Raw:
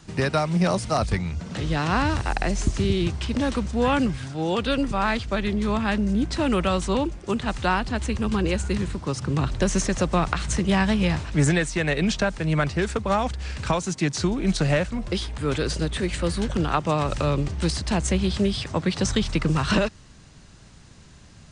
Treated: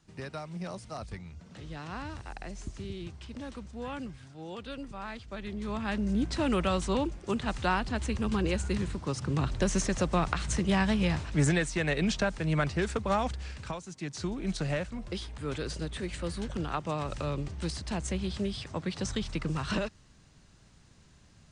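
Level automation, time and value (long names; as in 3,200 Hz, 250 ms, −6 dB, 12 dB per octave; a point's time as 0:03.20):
0:05.18 −17 dB
0:06.16 −5.5 dB
0:13.34 −5.5 dB
0:13.86 −17 dB
0:14.29 −10 dB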